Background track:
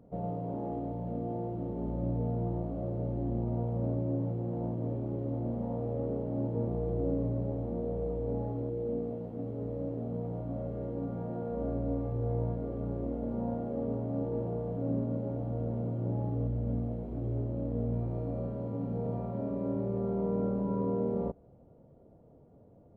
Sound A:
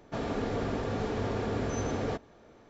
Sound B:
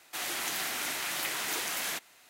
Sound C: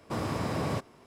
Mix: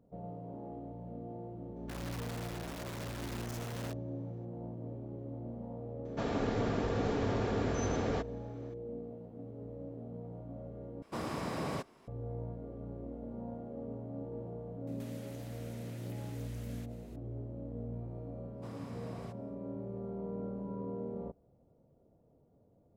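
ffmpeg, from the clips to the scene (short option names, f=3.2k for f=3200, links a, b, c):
-filter_complex "[1:a]asplit=2[a][b];[3:a]asplit=2[c][d];[0:a]volume=-9dB[e];[a]aeval=exprs='(mod(25.1*val(0)+1,2)-1)/25.1':c=same[f];[c]equalizer=f=100:t=o:w=0.6:g=-8.5[g];[2:a]acompressor=threshold=-46dB:ratio=6:attack=3.2:release=140:knee=1:detection=peak[h];[e]asplit=2[i][j];[i]atrim=end=11.024[k];[g]atrim=end=1.06,asetpts=PTS-STARTPTS,volume=-5dB[l];[j]atrim=start=12.076[m];[f]atrim=end=2.69,asetpts=PTS-STARTPTS,volume=-13dB,afade=t=in:d=0.004:c=hsin,afade=t=out:st=2.686:d=0.004:c=hsin,adelay=1760[n];[b]atrim=end=2.69,asetpts=PTS-STARTPTS,volume=-1.5dB,afade=t=in:d=0.004:c=hsin,afade=t=out:st=2.686:d=0.004:c=hsin,adelay=6050[o];[h]atrim=end=2.29,asetpts=PTS-STARTPTS,volume=-10dB,afade=t=in:d=0.004:c=hsin,afade=t=out:st=2.286:d=0.004:c=hsin,adelay=14870[p];[d]atrim=end=1.06,asetpts=PTS-STARTPTS,volume=-18dB,afade=t=in:d=0.1,afade=t=out:st=0.96:d=0.1,adelay=18520[q];[k][l]acrossfade=d=0.004:c1=hsin:c2=hsin[r];[r][m]acrossfade=d=0.004:c1=hsin:c2=hsin[s];[s][n][o][p][q]amix=inputs=5:normalize=0"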